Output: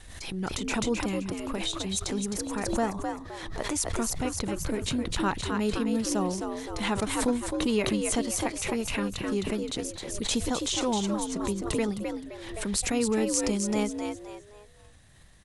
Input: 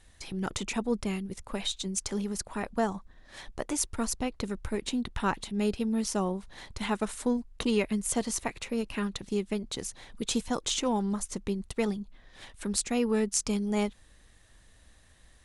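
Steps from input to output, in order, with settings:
echo with shifted repeats 260 ms, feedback 33%, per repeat +69 Hz, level −5.5 dB
tape wow and flutter 20 cents
background raised ahead of every attack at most 47 dB per second

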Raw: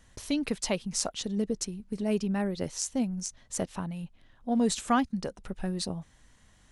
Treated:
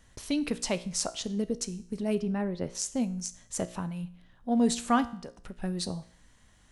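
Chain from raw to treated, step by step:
0:02.15–0:02.75: low-pass filter 2,000 Hz 6 dB per octave
0:05.07–0:05.62: downward compressor 6 to 1, threshold −38 dBFS, peak gain reduction 10.5 dB
tuned comb filter 59 Hz, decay 0.57 s, harmonics all, mix 50%
level +4 dB

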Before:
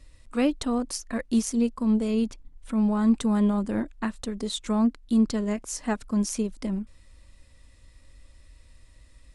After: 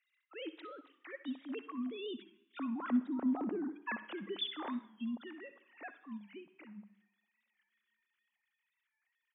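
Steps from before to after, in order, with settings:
three sine waves on the formant tracks
source passing by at 0:03.43, 16 m/s, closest 3.2 metres
treble cut that deepens with the level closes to 460 Hz, closed at −30.5 dBFS
spectral tilt +4.5 dB per octave
in parallel at −2 dB: compressor whose output falls as the input rises −46 dBFS, ratio −0.5
on the sum: repeating echo 66 ms, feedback 55%, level −21 dB
on a send at −12 dB: convolution reverb RT60 1.0 s, pre-delay 54 ms
on the sum: wow of a warped record 45 rpm, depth 100 cents
level +2.5 dB

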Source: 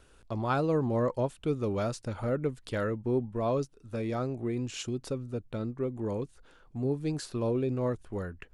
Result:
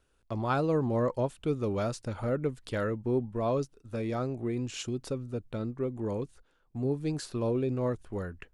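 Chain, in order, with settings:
noise gate −51 dBFS, range −12 dB

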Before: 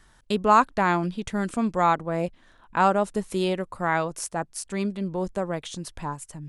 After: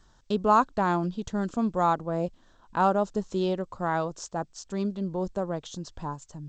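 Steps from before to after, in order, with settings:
parametric band 2,200 Hz −13.5 dB 0.78 octaves
level −1.5 dB
G.722 64 kbit/s 16,000 Hz

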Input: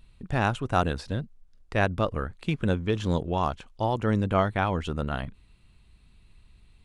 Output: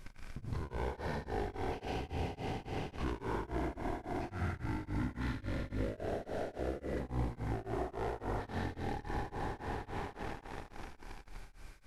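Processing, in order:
peak hold with a decay on every bin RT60 2.16 s
leveller curve on the samples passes 3
brickwall limiter −31.5 dBFS, peak gain reduction 25 dB
downward compressor, threshold −43 dBFS, peak gain reduction 8.5 dB
background noise pink −70 dBFS
on a send: flutter between parallel walls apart 8 metres, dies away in 0.63 s
on the sum: wrong playback speed 78 rpm record played at 45 rpm
tremolo along a rectified sine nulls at 3.6 Hz
level +8 dB

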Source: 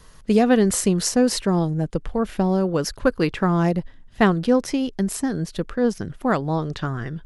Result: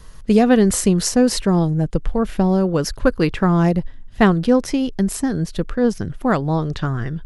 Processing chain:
low-shelf EQ 110 Hz +8.5 dB
level +2 dB

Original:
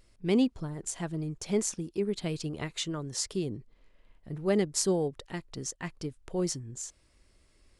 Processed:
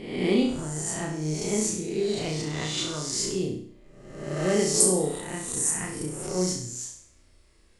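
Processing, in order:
peak hold with a rise ahead of every peak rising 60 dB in 1.00 s
0:04.80–0:06.23: high shelf with overshoot 7,000 Hz +10.5 dB, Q 3
on a send: flutter between parallel walls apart 5.6 metres, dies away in 0.57 s
on the sum: level −1 dB

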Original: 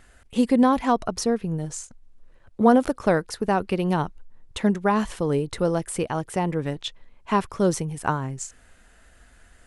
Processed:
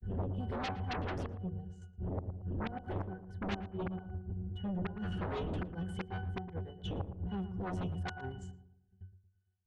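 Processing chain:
one-sided soft clipper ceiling −13.5 dBFS
wind on the microphone 97 Hz −28 dBFS
high-shelf EQ 7,700 Hz +5.5 dB
noise gate −34 dBFS, range −34 dB
gate pattern "x.x.xx..xxxxx" 66 BPM −12 dB
resonances in every octave F#, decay 0.26 s
gate with flip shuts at −26 dBFS, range −25 dB
in parallel at −8 dB: sine wavefolder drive 18 dB, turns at −25 dBFS
on the sum: pitch vibrato 0.36 Hz 26 cents
on a send: feedback echo with a low-pass in the loop 114 ms, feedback 43%, low-pass 1,200 Hz, level −10.5 dB
on the sum: level −3 dB

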